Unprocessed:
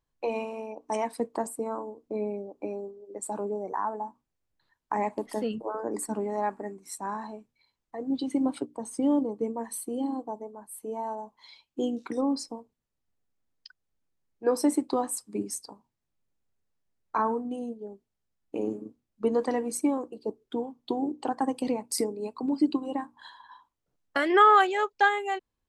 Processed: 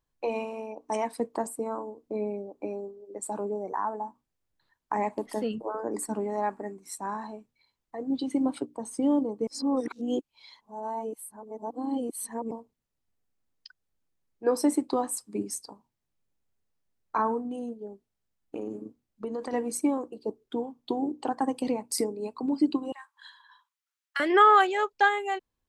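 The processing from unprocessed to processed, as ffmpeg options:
-filter_complex "[0:a]asettb=1/sr,asplit=3[a][b][c];[a]atrim=end=17.484[d];[b]atrim=start=17.48:end=19.53,asetpts=PTS-STARTPTS,afade=t=in:d=0.004:c=qsin,afade=t=out:st=2.046:d=0.004:c=qsin,acompressor=threshold=-30dB:ratio=6:attack=3.2:release=140:knee=1:detection=peak[e];[c]atrim=start=19.526[f];[d][e]acrossfade=d=0.004:c1=hsin:c2=qsin[g];[g][f]acrossfade=d=0.004:c1=qsin:c2=hsin,asettb=1/sr,asplit=3[h][i][j];[h]atrim=end=22.924[k];[i]atrim=start=22.92:end=24.2,asetpts=PTS-STARTPTS,afade=t=in:d=0.004:c=qsin,afade=t=out:st=1.276:d=0.004:c=qsin,highpass=f=1.3k:w=0.5412,highpass=f=1.3k:w=1.3066[l];[j]atrim=start=24.196[m];[k][l]acrossfade=d=0.004:c1=hsin:c2=qsin[n];[n][m]acrossfade=d=0.004:c1=qsin:c2=hsin,asplit=3[o][p][q];[o]atrim=end=9.472[r];[p]atrim=start=9.468:end=12.512,asetpts=PTS-STARTPTS,areverse[s];[q]atrim=start=12.508[t];[r][s]acrossfade=d=0.004:c1=hsin:c2=hsin[u];[u][t]acrossfade=d=0.004:c1=hsin:c2=hsin"

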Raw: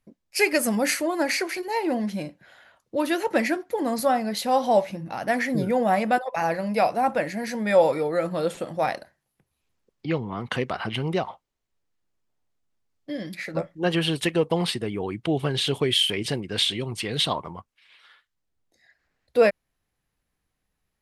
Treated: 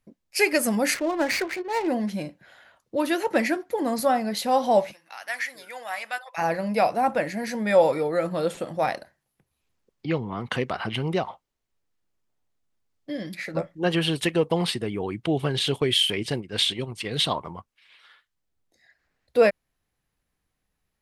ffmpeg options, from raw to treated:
-filter_complex "[0:a]asettb=1/sr,asplit=3[a][b][c];[a]atrim=end=0.944[d];[b]atrim=start=0.94:end=1.88,asetpts=PTS-STARTPTS,afade=t=in:d=0.004:c=qsin,afade=t=out:st=0.936:d=0.004:c=qsin,adynamicsmooth=sensitivity=7:basefreq=510[e];[c]atrim=start=1.876[f];[d][e]acrossfade=d=0.004:c1=hsin:c2=qsin[g];[g][f]acrossfade=d=0.004:c1=qsin:c2=hsin,asplit=3[h][i][j];[h]afade=t=out:st=4.91:d=0.02[k];[i]highpass=1.5k,afade=t=in:st=4.91:d=0.02,afade=t=out:st=6.37:d=0.02[l];[j]afade=t=in:st=6.37:d=0.02[m];[k][l][m]amix=inputs=3:normalize=0,asettb=1/sr,asplit=3[n][o][p];[n]atrim=end=15.594[q];[o]atrim=start=15.59:end=17.41,asetpts=PTS-STARTPTS,afade=t=in:d=0.004:c=qsin,afade=t=out:st=1.816:d=0.004:c=qsin,agate=range=-7dB:threshold=-31dB:ratio=16:release=100:detection=peak[r];[p]atrim=start=17.406[s];[q][r]acrossfade=d=0.004:c1=hsin:c2=qsin[t];[t][s]acrossfade=d=0.004:c1=qsin:c2=hsin"

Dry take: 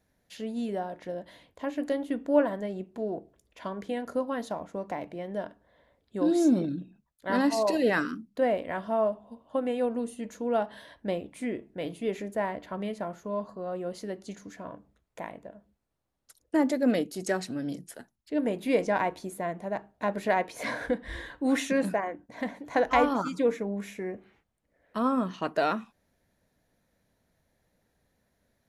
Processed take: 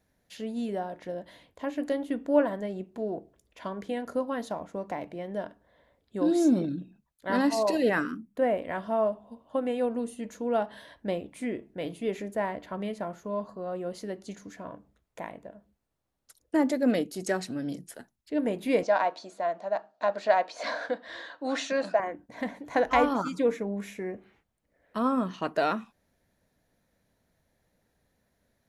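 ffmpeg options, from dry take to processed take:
-filter_complex "[0:a]asettb=1/sr,asplit=3[a][b][c];[a]atrim=end=7.894[d];[b]atrim=start=7.89:end=8.62,asetpts=PTS-STARTPTS,afade=t=in:d=0.004:c=qsin,afade=t=out:st=0.726:d=0.004:c=qsin,equalizer=f=4.4k:w=1.6:g=-9.5[e];[c]atrim=start=8.616[f];[d][e]acrossfade=d=0.004:c1=hsin:c2=qsin[g];[g][f]acrossfade=d=0.004:c1=qsin:c2=hsin,asettb=1/sr,asplit=3[h][i][j];[h]atrim=end=18.834[k];[i]atrim=start=18.83:end=22,asetpts=PTS-STARTPTS,afade=t=in:d=0.004:c=qsin,afade=t=out:st=3.166:d=0.004:c=qsin,highpass=390,equalizer=f=400:t=q:w=4:g=-7,equalizer=f=650:t=q:w=4:g=7,equalizer=f=1.3k:t=q:w=4:g=4,equalizer=f=2.1k:t=q:w=4:g=-5,equalizer=f=4.4k:t=q:w=4:g=7,lowpass=f=6.9k:w=0.5412,lowpass=f=6.9k:w=1.3066[l];[j]atrim=start=21.996[m];[k][l]acrossfade=d=0.004:c1=hsin:c2=qsin[n];[n][m]acrossfade=d=0.004:c1=qsin:c2=hsin"

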